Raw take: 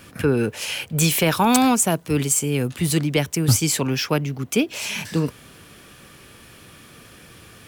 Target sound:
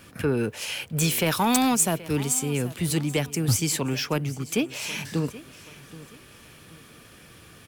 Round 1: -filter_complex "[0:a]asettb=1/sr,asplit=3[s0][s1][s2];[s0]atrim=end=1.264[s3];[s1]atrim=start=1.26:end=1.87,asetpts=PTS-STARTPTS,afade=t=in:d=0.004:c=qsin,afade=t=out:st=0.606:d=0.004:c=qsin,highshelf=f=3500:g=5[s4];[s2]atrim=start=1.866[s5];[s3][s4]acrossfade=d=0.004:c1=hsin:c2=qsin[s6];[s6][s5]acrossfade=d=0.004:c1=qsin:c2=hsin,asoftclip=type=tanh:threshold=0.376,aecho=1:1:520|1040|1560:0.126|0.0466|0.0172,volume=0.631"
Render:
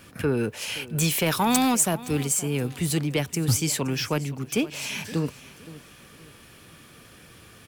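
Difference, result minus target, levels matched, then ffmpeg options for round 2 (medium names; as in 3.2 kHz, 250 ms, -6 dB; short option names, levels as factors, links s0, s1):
echo 257 ms early
-filter_complex "[0:a]asettb=1/sr,asplit=3[s0][s1][s2];[s0]atrim=end=1.264[s3];[s1]atrim=start=1.26:end=1.87,asetpts=PTS-STARTPTS,afade=t=in:d=0.004:c=qsin,afade=t=out:st=0.606:d=0.004:c=qsin,highshelf=f=3500:g=5[s4];[s2]atrim=start=1.866[s5];[s3][s4]acrossfade=d=0.004:c1=hsin:c2=qsin[s6];[s6][s5]acrossfade=d=0.004:c1=qsin:c2=hsin,asoftclip=type=tanh:threshold=0.376,aecho=1:1:777|1554|2331:0.126|0.0466|0.0172,volume=0.631"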